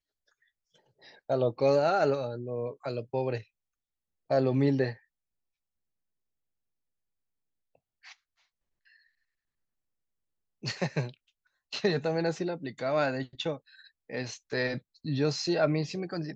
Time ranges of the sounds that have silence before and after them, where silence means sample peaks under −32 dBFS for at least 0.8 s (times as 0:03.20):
0:01.30–0:03.38
0:04.31–0:04.92